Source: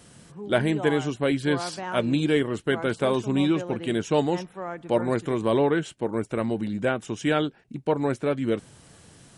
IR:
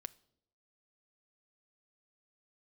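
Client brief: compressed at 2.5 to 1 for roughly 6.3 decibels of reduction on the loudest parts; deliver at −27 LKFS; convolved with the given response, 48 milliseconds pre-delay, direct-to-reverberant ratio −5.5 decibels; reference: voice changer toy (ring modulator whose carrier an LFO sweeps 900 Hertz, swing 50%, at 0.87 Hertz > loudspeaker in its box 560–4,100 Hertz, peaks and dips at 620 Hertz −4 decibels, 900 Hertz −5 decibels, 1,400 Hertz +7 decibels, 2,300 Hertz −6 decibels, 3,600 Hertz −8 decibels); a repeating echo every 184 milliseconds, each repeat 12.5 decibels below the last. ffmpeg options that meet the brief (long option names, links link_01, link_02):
-filter_complex "[0:a]acompressor=threshold=-26dB:ratio=2.5,aecho=1:1:184|368|552:0.237|0.0569|0.0137,asplit=2[link_01][link_02];[1:a]atrim=start_sample=2205,adelay=48[link_03];[link_02][link_03]afir=irnorm=-1:irlink=0,volume=10dB[link_04];[link_01][link_04]amix=inputs=2:normalize=0,aeval=exprs='val(0)*sin(2*PI*900*n/s+900*0.5/0.87*sin(2*PI*0.87*n/s))':channel_layout=same,highpass=560,equalizer=frequency=620:width_type=q:width=4:gain=-4,equalizer=frequency=900:width_type=q:width=4:gain=-5,equalizer=frequency=1400:width_type=q:width=4:gain=7,equalizer=frequency=2300:width_type=q:width=4:gain=-6,equalizer=frequency=3600:width_type=q:width=4:gain=-8,lowpass=frequency=4100:width=0.5412,lowpass=frequency=4100:width=1.3066,volume=-1.5dB"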